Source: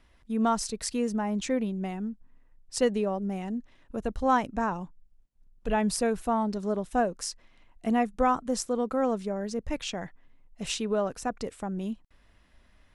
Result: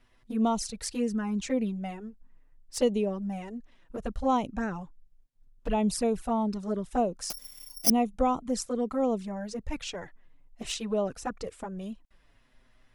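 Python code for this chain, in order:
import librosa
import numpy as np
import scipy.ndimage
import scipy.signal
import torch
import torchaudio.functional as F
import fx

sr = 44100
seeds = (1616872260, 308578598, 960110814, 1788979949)

y = fx.env_flanger(x, sr, rest_ms=8.5, full_db=-22.5)
y = fx.resample_bad(y, sr, factor=8, down='none', up='zero_stuff', at=(7.3, 7.9))
y = y * 10.0 ** (1.0 / 20.0)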